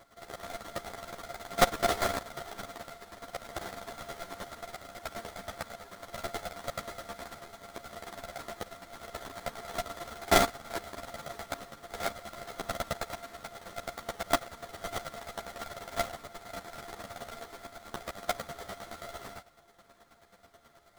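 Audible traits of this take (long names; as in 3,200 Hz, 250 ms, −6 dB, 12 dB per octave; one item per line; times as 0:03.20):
a buzz of ramps at a fixed pitch in blocks of 64 samples
chopped level 9.3 Hz, depth 65%, duty 20%
aliases and images of a low sample rate 2,700 Hz, jitter 20%
a shimmering, thickened sound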